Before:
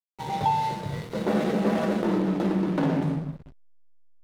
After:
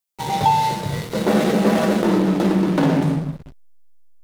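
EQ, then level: treble shelf 4.5 kHz +9 dB; +7.0 dB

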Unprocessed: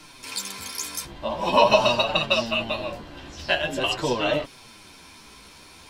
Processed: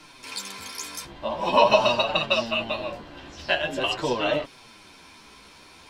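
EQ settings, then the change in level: bass shelf 180 Hz -5.5 dB; treble shelf 6.7 kHz -8.5 dB; 0.0 dB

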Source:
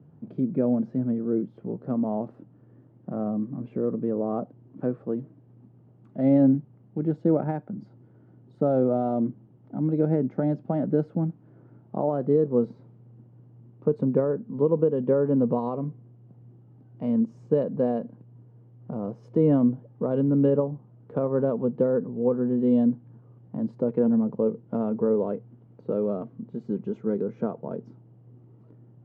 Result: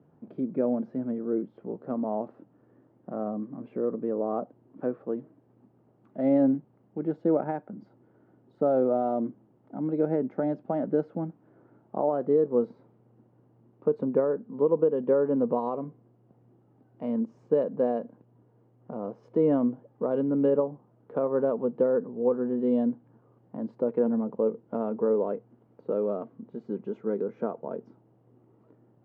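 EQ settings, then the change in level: low-pass 1.9 kHz 6 dB/octave; peaking EQ 120 Hz -10 dB 1.4 oct; bass shelf 370 Hz -6.5 dB; +3.0 dB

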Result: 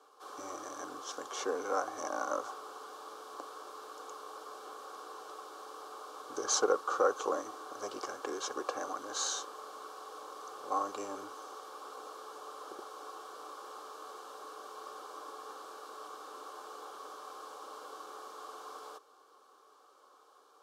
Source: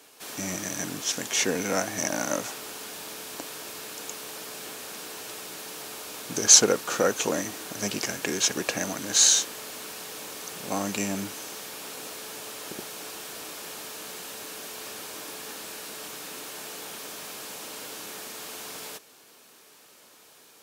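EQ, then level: vowel filter a; static phaser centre 680 Hz, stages 6; +11.5 dB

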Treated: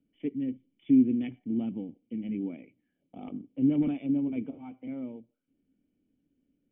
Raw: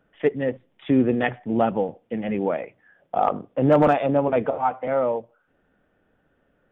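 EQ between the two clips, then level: dynamic bell 540 Hz, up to -5 dB, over -33 dBFS, Q 2; cascade formant filter i; 0.0 dB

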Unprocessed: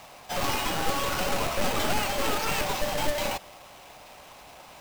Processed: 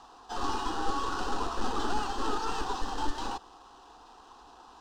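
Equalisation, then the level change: distance through air 120 m; peaking EQ 85 Hz -8 dB 0.51 oct; static phaser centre 590 Hz, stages 6; 0.0 dB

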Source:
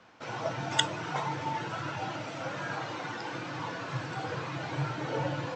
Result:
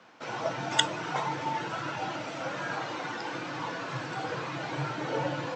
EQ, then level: high-pass 160 Hz 12 dB/octave; +2.0 dB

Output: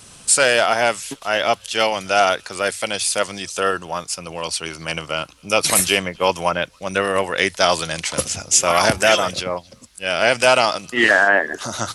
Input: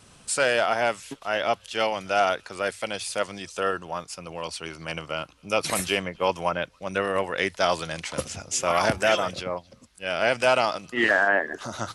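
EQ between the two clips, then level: treble shelf 4 kHz +9.5 dB; +5.5 dB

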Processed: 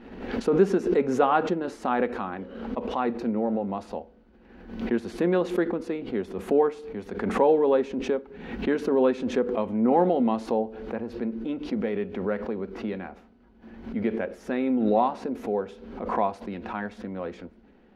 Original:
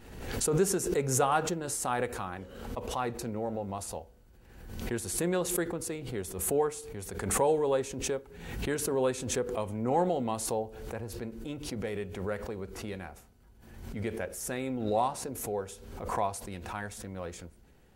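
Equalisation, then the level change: distance through air 300 m; resonant low shelf 170 Hz -8.5 dB, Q 3; +6.0 dB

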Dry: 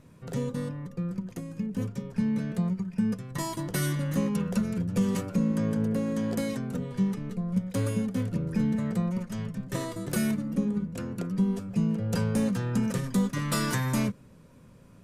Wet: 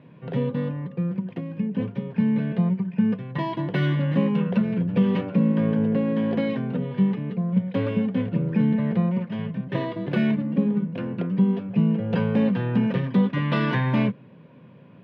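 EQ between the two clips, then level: elliptic band-pass 130–3100 Hz, stop band 40 dB; band-stop 1.3 kHz, Q 6.3; +6.5 dB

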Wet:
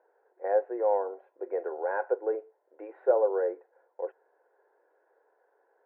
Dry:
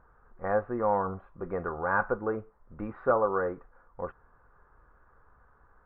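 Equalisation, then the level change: steep high-pass 350 Hz 36 dB/octave; low-pass 2.1 kHz 12 dB/octave; static phaser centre 500 Hz, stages 4; +3.0 dB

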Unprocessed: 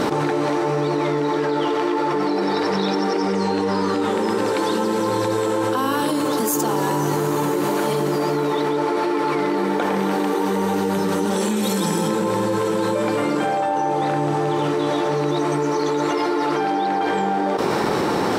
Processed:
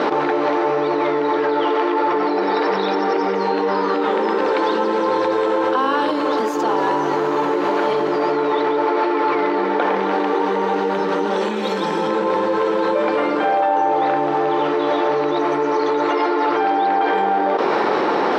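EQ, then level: high-pass 390 Hz 12 dB/octave; distance through air 240 m; +5.5 dB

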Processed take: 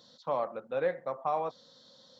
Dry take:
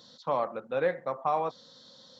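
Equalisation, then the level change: peaking EQ 600 Hz +3 dB 0.77 oct; -4.5 dB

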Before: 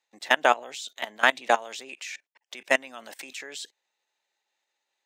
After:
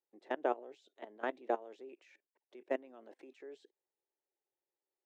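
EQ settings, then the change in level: band-pass filter 370 Hz, Q 3.2; 0.0 dB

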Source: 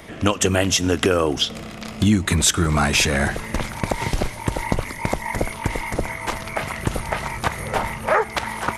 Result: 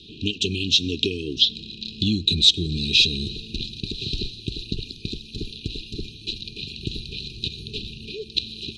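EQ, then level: brick-wall FIR band-stop 450–2400 Hz; resonant low-pass 4 kHz, resonance Q 12; -6.5 dB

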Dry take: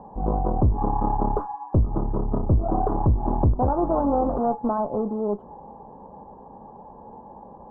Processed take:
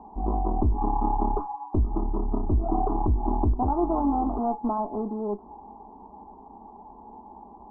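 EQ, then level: low-pass 1.2 kHz 12 dB/octave; static phaser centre 530 Hz, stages 6; 0.0 dB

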